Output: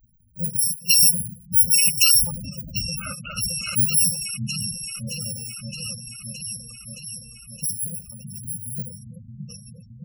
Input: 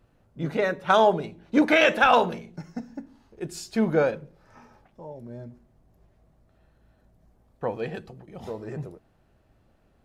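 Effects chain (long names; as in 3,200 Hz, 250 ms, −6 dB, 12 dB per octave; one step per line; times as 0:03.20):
samples in bit-reversed order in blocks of 128 samples
echo whose low-pass opens from repeat to repeat 619 ms, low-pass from 400 Hz, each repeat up 2 octaves, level −3 dB
gate on every frequency bin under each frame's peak −10 dB strong
level +5 dB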